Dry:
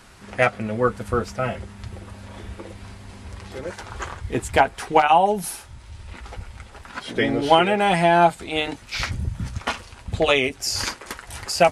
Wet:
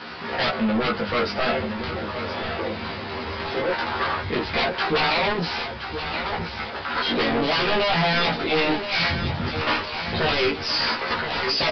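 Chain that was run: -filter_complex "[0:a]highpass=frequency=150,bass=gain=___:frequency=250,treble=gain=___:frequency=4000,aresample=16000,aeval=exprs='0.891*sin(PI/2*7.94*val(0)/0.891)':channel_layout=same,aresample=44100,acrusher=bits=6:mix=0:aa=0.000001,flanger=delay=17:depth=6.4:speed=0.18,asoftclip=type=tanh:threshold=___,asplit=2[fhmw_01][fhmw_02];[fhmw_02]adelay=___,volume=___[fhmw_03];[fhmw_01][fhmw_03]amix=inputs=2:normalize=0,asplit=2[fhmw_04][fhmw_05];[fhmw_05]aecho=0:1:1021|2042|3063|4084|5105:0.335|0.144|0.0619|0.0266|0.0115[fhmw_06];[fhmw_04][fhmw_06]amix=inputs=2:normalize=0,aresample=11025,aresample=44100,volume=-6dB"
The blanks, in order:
-4, 0, -15.5dB, 13, -3dB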